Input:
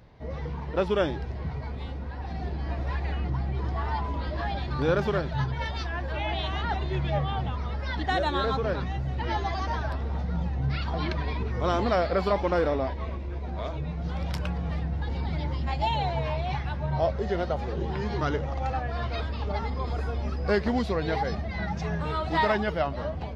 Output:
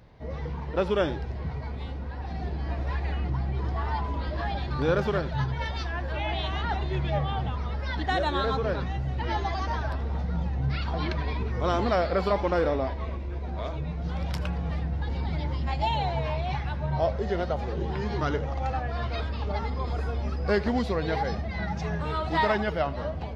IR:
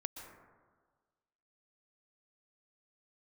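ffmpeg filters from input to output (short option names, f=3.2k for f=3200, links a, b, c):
-filter_complex "[0:a]asplit=2[a][b];[1:a]atrim=start_sample=2205,afade=t=out:st=0.2:d=0.01,atrim=end_sample=9261,asetrate=70560,aresample=44100[c];[b][c]afir=irnorm=-1:irlink=0,volume=2dB[d];[a][d]amix=inputs=2:normalize=0,volume=-4dB"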